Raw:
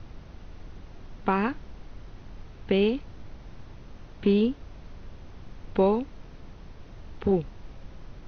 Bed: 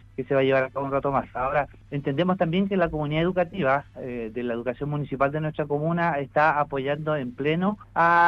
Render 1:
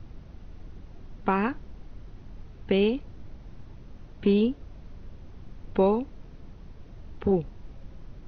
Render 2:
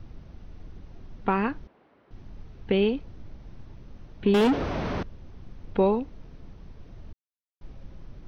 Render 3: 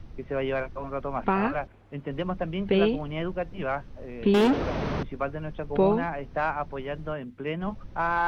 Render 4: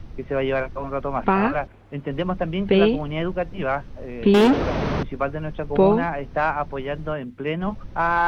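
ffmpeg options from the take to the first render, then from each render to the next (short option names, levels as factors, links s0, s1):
-af "afftdn=nr=6:nf=-47"
-filter_complex "[0:a]asettb=1/sr,asplit=3[s0][s1][s2];[s0]atrim=end=1.674[s3];[s1]atrim=start=1.67:end=2.11,asetpts=PTS-STARTPTS,afade=t=in:d=0.004:c=qsin,afade=t=out:st=0.436:d=0.004:c=qsin,highpass=420,lowpass=2200[s4];[s2]atrim=start=2.106[s5];[s3][s4]acrossfade=d=0.004:c1=hsin:c2=qsin[s6];[s6][s5]acrossfade=d=0.004:c1=qsin:c2=hsin,asettb=1/sr,asplit=3[s7][s8][s9];[s7]atrim=end=4.344[s10];[s8]atrim=start=4.34:end=5.03,asetpts=PTS-STARTPTS,afade=t=in:d=0.004:c=qsin,afade=t=out:st=0.686:d=0.004:c=qsin,asplit=2[s11][s12];[s12]highpass=f=720:p=1,volume=89.1,asoftclip=type=tanh:threshold=0.211[s13];[s11][s13]amix=inputs=2:normalize=0,lowpass=f=1500:p=1,volume=0.501[s14];[s9]atrim=start=5.026[s15];[s10][s14]acrossfade=d=0.004:c1=hsin:c2=qsin[s16];[s16][s15]acrossfade=d=0.004:c1=qsin:c2=hsin,asplit=3[s17][s18][s19];[s17]atrim=end=7.13,asetpts=PTS-STARTPTS,afade=t=out:st=7.126:d=0.004:c=hsin[s20];[s18]atrim=start=7.13:end=7.61,asetpts=PTS-STARTPTS,volume=0[s21];[s19]atrim=start=7.61,asetpts=PTS-STARTPTS,afade=t=in:d=0.004:c=hsin[s22];[s20][s21][s22]concat=n=3:v=0:a=1"
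-filter_complex "[1:a]volume=0.422[s0];[0:a][s0]amix=inputs=2:normalize=0"
-af "volume=1.88"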